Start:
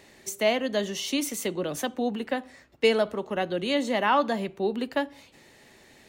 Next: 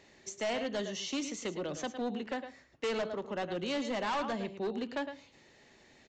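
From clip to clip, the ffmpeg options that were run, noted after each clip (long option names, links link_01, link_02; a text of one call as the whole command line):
ffmpeg -i in.wav -af "aecho=1:1:109:0.282,aresample=16000,asoftclip=type=hard:threshold=-23.5dB,aresample=44100,volume=-6.5dB" out.wav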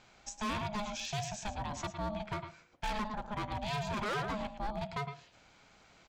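ffmpeg -i in.wav -af "aeval=exprs='val(0)*sin(2*PI*420*n/s)':channel_layout=same,asoftclip=type=hard:threshold=-32.5dB,volume=2dB" out.wav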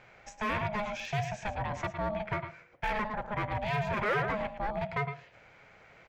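ffmpeg -i in.wav -af "equalizer=frequency=125:width_type=o:width=1:gain=7,equalizer=frequency=250:width_type=o:width=1:gain=-4,equalizer=frequency=500:width_type=o:width=1:gain=9,equalizer=frequency=2000:width_type=o:width=1:gain=11,equalizer=frequency=4000:width_type=o:width=1:gain=-6,equalizer=frequency=8000:width_type=o:width=1:gain=-9" out.wav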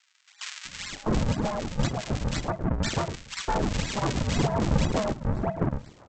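ffmpeg -i in.wav -filter_complex "[0:a]aresample=16000,acrusher=samples=26:mix=1:aa=0.000001:lfo=1:lforange=41.6:lforate=2,aresample=44100,acrossover=split=1600[link_01][link_02];[link_01]adelay=650[link_03];[link_03][link_02]amix=inputs=2:normalize=0,volume=7dB" out.wav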